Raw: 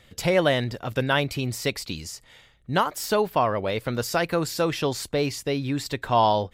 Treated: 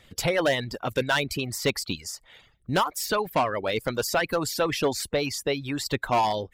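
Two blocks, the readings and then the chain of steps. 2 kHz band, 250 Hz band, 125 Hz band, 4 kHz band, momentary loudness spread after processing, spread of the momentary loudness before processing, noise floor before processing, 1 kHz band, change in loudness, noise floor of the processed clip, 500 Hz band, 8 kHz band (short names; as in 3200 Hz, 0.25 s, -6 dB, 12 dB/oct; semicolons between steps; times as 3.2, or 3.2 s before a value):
+0.5 dB, -3.0 dB, -5.0 dB, +0.5 dB, 6 LU, 8 LU, -56 dBFS, -2.0 dB, -1.5 dB, -62 dBFS, -2.0 dB, +2.0 dB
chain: harmonic-percussive split percussive +9 dB; hard clip -11.5 dBFS, distortion -11 dB; reverb removal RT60 0.53 s; gain -5.5 dB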